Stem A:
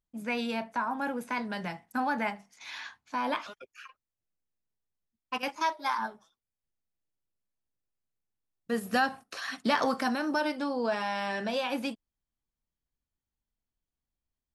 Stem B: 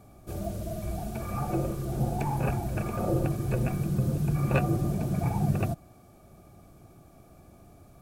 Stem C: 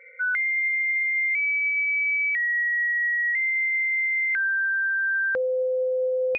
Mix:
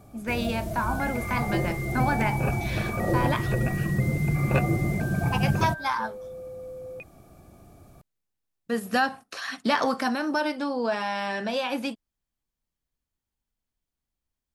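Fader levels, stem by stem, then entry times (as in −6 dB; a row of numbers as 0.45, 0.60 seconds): +3.0, +2.0, −15.0 decibels; 0.00, 0.00, 0.65 seconds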